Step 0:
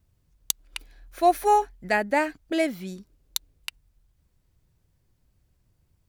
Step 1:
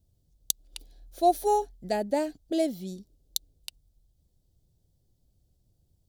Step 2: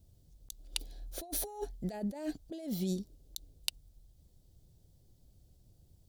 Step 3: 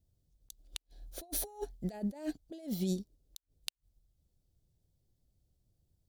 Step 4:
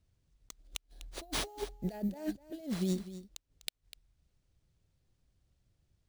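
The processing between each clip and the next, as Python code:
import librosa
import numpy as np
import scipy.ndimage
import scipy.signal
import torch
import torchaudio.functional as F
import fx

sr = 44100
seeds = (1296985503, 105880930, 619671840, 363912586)

y1 = fx.band_shelf(x, sr, hz=1600.0, db=-15.5, octaves=1.7)
y1 = F.gain(torch.from_numpy(y1), -1.5).numpy()
y2 = fx.over_compress(y1, sr, threshold_db=-37.0, ratio=-1.0)
y2 = F.gain(torch.from_numpy(y2), -2.0).numpy()
y3 = fx.gate_flip(y2, sr, shuts_db=-23.0, range_db=-34)
y3 = fx.upward_expand(y3, sr, threshold_db=-58.0, expansion=1.5)
y3 = F.gain(torch.from_numpy(y3), 1.5).numpy()
y4 = fx.sample_hold(y3, sr, seeds[0], rate_hz=14000.0, jitter_pct=0)
y4 = y4 + 10.0 ** (-14.0 / 20.0) * np.pad(y4, (int(249 * sr / 1000.0), 0))[:len(y4)]
y4 = F.gain(torch.from_numpy(y4), 1.0).numpy()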